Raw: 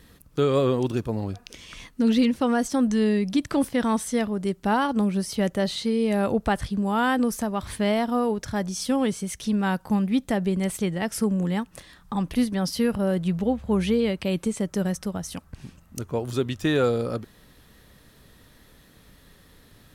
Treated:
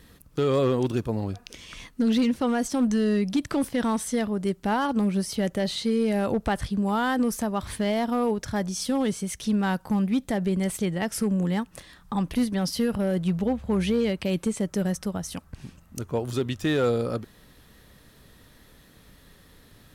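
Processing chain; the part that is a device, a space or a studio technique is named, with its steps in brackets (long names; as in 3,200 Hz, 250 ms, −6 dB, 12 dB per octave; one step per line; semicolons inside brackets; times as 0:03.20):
limiter into clipper (brickwall limiter −15 dBFS, peak gain reduction 2.5 dB; hard clipping −17 dBFS, distortion −25 dB)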